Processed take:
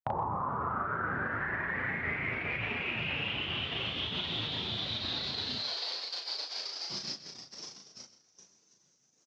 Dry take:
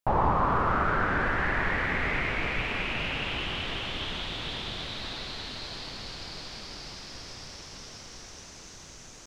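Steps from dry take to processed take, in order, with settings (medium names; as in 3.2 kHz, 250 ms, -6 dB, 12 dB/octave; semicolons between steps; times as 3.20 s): spectral contrast enhancement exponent 1.7; high-pass 88 Hz 24 dB/octave, from 5.58 s 460 Hz, from 6.90 s 150 Hz; gate -44 dBFS, range -31 dB; peaking EQ 6 kHz +6.5 dB 1.2 oct; compression 6:1, threshold -40 dBFS, peak gain reduction 17 dB; doubling 36 ms -3 dB; delay 126 ms -15 dB; trim +6 dB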